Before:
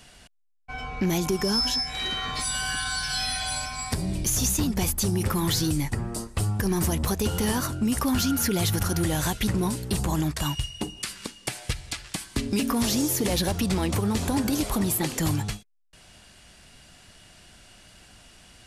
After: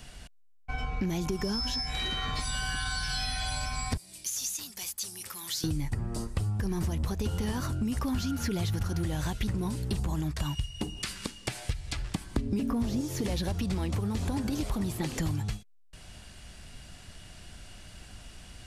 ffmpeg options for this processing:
-filter_complex "[0:a]asettb=1/sr,asplit=3[a][b][c];[a]atrim=end=3.974[d];[b]atrim=start=3.97:end=5.64,asetpts=PTS-STARTPTS,afade=t=in:d=0.004:c=qsin,afade=t=out:st=1.666:d=0.004:c=qsin,aderivative[e];[c]atrim=start=5.636[f];[d][e]acrossfade=d=0.004:c1=hsin:c2=qsin[g];[g][f]acrossfade=d=0.004:c1=qsin:c2=hsin,asettb=1/sr,asplit=3[h][i][j];[h]atrim=end=11.944[k];[i]atrim=start=11.94:end=13.01,asetpts=PTS-STARTPTS,afade=t=in:d=0.004:c=qsin,afade=t=out:st=1.066:d=0.004:c=qsin,tiltshelf=f=1.3k:g=6[l];[j]atrim=start=13.006[m];[k][l]acrossfade=d=0.004:c1=hsin:c2=qsin[n];[n][m]acrossfade=d=0.004:c1=qsin:c2=hsin,acrossover=split=6600[o][p];[p]acompressor=threshold=-40dB:ratio=4:attack=1:release=60[q];[o][q]amix=inputs=2:normalize=0,lowshelf=f=130:g=10.5,acompressor=threshold=-29dB:ratio=4"

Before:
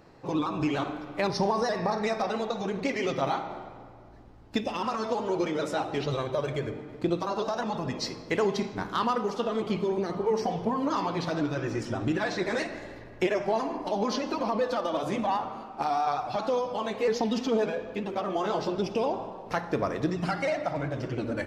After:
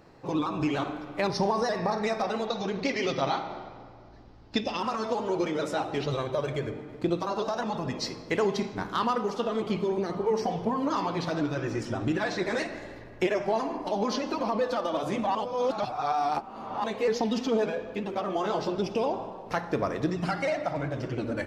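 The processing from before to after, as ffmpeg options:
-filter_complex "[0:a]asettb=1/sr,asplit=3[a][b][c];[a]atrim=end=2.474[d];[b]atrim=start=2.47:end=4.8,asetpts=PTS-STARTPTS,afade=t=in:d=0.004:c=qsin,afade=t=out:st=2.326:d=0.004:c=qsin,lowpass=f=5k:t=q:w=2.1[e];[c]atrim=start=4.796[f];[d][e]acrossfade=d=0.004:c1=hsin:c2=qsin[g];[g][f]acrossfade=d=0.004:c1=qsin:c2=hsin,asplit=3[h][i][j];[h]atrim=end=15.352[k];[i]atrim=start=15.348:end=16.842,asetpts=PTS-STARTPTS,areverse[l];[j]atrim=start=16.838[m];[k][l]acrossfade=d=0.004:c1=hsin:c2=hsin[n];[n][m]acrossfade=d=0.004:c1=hsin:c2=hsin"

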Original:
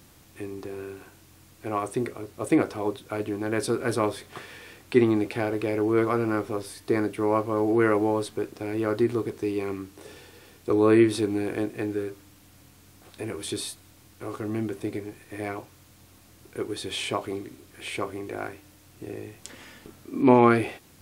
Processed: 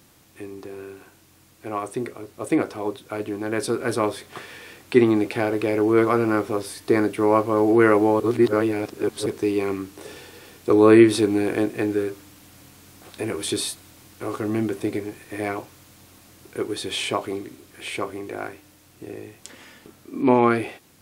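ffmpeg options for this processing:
-filter_complex "[0:a]asplit=3[a][b][c];[a]atrim=end=8.202[d];[b]atrim=start=8.198:end=9.262,asetpts=PTS-STARTPTS,areverse[e];[c]atrim=start=9.258[f];[d][e]acrossfade=d=0.004:c1=hsin:c2=hsin[g];[g][f]acrossfade=d=0.004:c1=hsin:c2=hsin,dynaudnorm=f=990:g=9:m=11.5dB,lowshelf=f=69:g=-11.5"

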